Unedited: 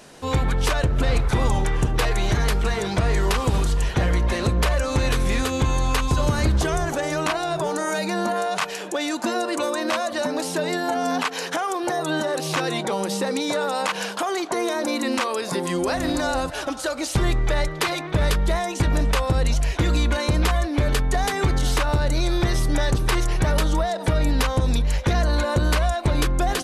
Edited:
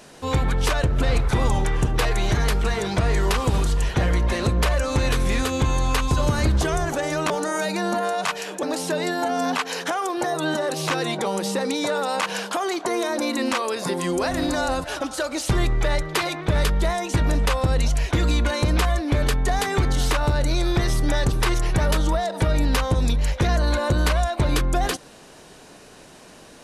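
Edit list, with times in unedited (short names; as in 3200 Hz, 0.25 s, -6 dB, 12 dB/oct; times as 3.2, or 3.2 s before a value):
7.3–7.63 cut
8.96–10.29 cut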